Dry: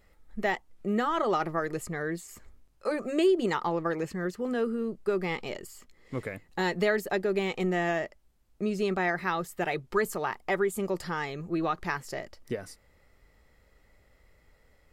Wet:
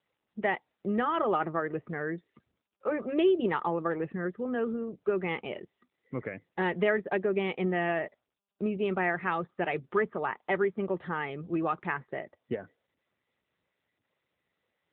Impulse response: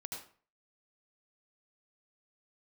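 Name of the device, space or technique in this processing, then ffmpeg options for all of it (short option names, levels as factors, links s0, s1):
mobile call with aggressive noise cancelling: -af "highpass=110,afftdn=nr=26:nf=-50" -ar 8000 -c:a libopencore_amrnb -b:a 10200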